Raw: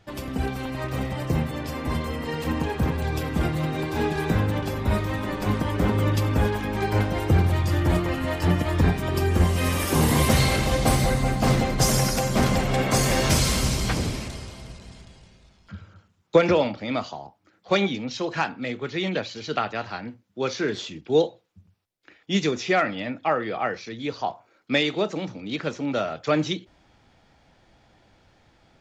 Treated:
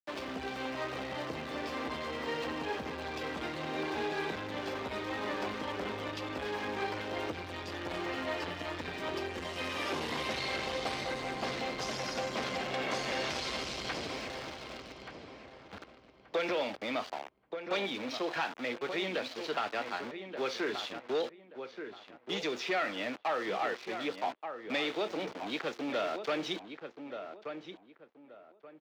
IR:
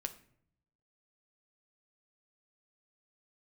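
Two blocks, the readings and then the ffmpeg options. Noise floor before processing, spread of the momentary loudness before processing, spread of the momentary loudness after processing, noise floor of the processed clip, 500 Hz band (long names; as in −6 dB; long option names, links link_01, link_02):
−62 dBFS, 11 LU, 11 LU, −58 dBFS, −9.5 dB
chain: -filter_complex "[0:a]acontrast=83,equalizer=frequency=72:width_type=o:width=1.7:gain=4.5,aeval=exprs='val(0)*gte(abs(val(0)),0.0398)':channel_layout=same,acrossover=split=2300|5600[link_01][link_02][link_03];[link_01]acompressor=threshold=-18dB:ratio=4[link_04];[link_02]acompressor=threshold=-25dB:ratio=4[link_05];[link_03]acompressor=threshold=-33dB:ratio=4[link_06];[link_04][link_05][link_06]amix=inputs=3:normalize=0,asplit=2[link_07][link_08];[link_08]adelay=1179,lowpass=frequency=1900:poles=1,volume=-10dB,asplit=2[link_09][link_10];[link_10]adelay=1179,lowpass=frequency=1900:poles=1,volume=0.26,asplit=2[link_11][link_12];[link_12]adelay=1179,lowpass=frequency=1900:poles=1,volume=0.26[link_13];[link_07][link_09][link_11][link_13]amix=inputs=4:normalize=0,asoftclip=type=tanh:threshold=-16.5dB,highpass=45,acrossover=split=280 5300:gain=0.0891 1 0.1[link_14][link_15][link_16];[link_14][link_15][link_16]amix=inputs=3:normalize=0,volume=-8dB"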